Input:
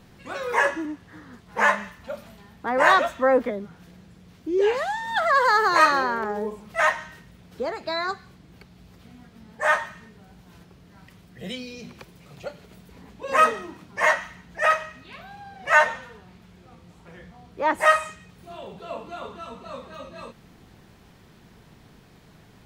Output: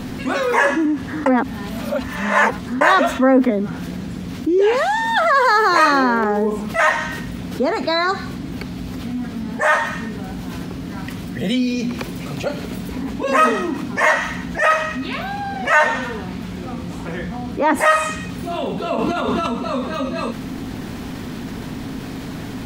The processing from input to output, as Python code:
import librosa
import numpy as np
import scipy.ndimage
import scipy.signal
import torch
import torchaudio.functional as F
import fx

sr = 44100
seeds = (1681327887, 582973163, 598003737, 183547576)

y = fx.over_compress(x, sr, threshold_db=-40.0, ratio=-1.0, at=(18.95, 19.46), fade=0.02)
y = fx.edit(y, sr, fx.reverse_span(start_s=1.26, length_s=1.55), tone=tone)
y = fx.peak_eq(y, sr, hz=260.0, db=13.5, octaves=0.37)
y = fx.env_flatten(y, sr, amount_pct=50)
y = y * 10.0 ** (1.5 / 20.0)